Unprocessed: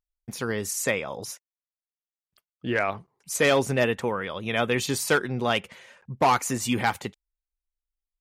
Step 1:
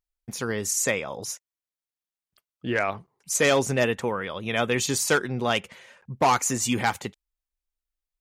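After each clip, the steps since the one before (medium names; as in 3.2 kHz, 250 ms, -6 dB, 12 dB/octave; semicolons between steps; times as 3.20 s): dynamic bell 6.7 kHz, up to +7 dB, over -47 dBFS, Q 2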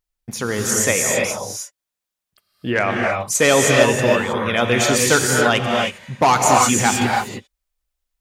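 gated-style reverb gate 340 ms rising, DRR -0.5 dB; trim +5.5 dB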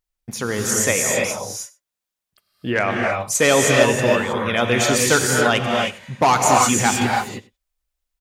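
delay 98 ms -21.5 dB; trim -1 dB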